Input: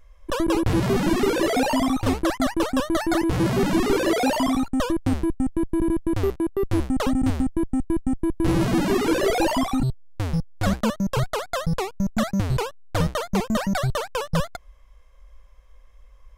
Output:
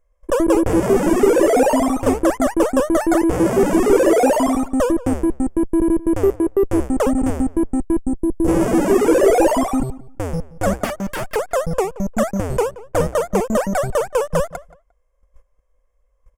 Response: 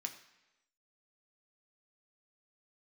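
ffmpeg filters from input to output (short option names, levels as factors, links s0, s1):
-filter_complex "[0:a]asplit=3[s0][s1][s2];[s0]afade=t=out:st=8.02:d=0.02[s3];[s1]equalizer=f=2100:t=o:w=2.1:g=-14,afade=t=in:st=8.02:d=0.02,afade=t=out:st=8.47:d=0.02[s4];[s2]afade=t=in:st=8.47:d=0.02[s5];[s3][s4][s5]amix=inputs=3:normalize=0,agate=range=0.141:threshold=0.00794:ratio=16:detection=peak,equalizer=f=125:t=o:w=1:g=-8,equalizer=f=500:t=o:w=1:g=9,equalizer=f=4000:t=o:w=1:g=-12,equalizer=f=8000:t=o:w=1:g=7,asettb=1/sr,asplit=3[s6][s7][s8];[s6]atrim=end=10.844[s9];[s7]atrim=start=10.84:end=11.36,asetpts=PTS-STARTPTS,afade=t=in:d=0.004:c=qsin,afade=t=out:st=0.516:d=0.004:c=qsin,aeval=exprs='0.0794*(abs(mod(val(0)/0.0794+3,4)-2)-1)':c=same[s10];[s8]atrim=start=11.356[s11];[s9][s10]acrossfade=d=0.004:c1=hsin:c2=qsin[s12];[s12][s11]acrossfade=d=0.004:c1=qsin:c2=hsin,bandreject=f=4000:w=7.8,asplit=2[s13][s14];[s14]adelay=176,lowpass=f=2500:p=1,volume=0.119,asplit=2[s15][s16];[s16]adelay=176,lowpass=f=2500:p=1,volume=0.19[s17];[s13][s15][s17]amix=inputs=3:normalize=0,volume=1.41"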